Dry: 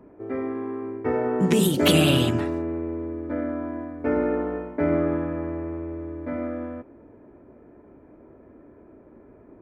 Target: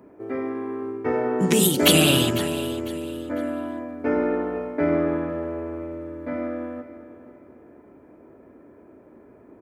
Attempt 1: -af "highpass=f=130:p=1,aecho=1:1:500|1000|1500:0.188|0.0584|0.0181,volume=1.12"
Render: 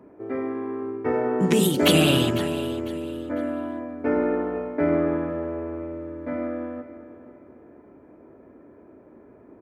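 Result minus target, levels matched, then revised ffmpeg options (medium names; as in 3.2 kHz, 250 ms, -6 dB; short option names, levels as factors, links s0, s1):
8 kHz band -6.5 dB
-af "highpass=f=130:p=1,highshelf=f=4100:g=9,aecho=1:1:500|1000|1500:0.188|0.0584|0.0181,volume=1.12"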